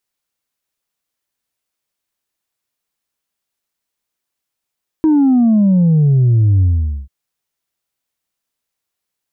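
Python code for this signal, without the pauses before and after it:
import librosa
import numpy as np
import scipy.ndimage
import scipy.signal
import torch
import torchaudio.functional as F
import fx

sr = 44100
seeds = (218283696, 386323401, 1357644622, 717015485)

y = fx.sub_drop(sr, level_db=-8.5, start_hz=320.0, length_s=2.04, drive_db=1.5, fade_s=0.46, end_hz=65.0)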